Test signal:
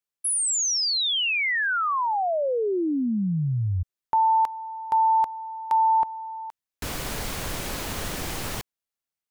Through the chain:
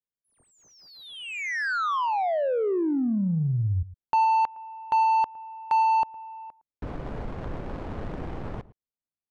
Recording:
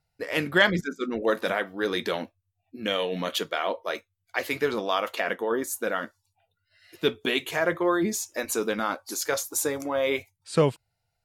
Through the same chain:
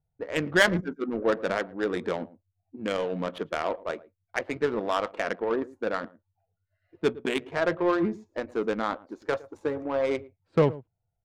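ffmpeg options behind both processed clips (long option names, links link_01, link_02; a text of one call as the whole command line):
ffmpeg -i in.wav -filter_complex "[0:a]asplit=2[link_01][link_02];[link_02]adelay=110.8,volume=-17dB,highshelf=frequency=4000:gain=-2.49[link_03];[link_01][link_03]amix=inputs=2:normalize=0,adynamicsmooth=sensitivity=1:basefreq=650" out.wav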